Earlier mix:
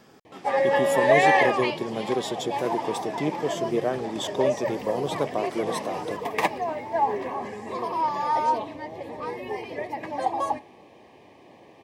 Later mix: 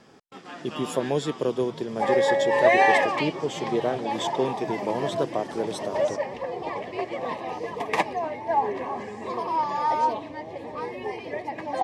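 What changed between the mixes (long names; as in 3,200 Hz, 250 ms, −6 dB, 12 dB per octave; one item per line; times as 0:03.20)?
background: entry +1.55 s
master: add low-pass filter 8,900 Hz 12 dB per octave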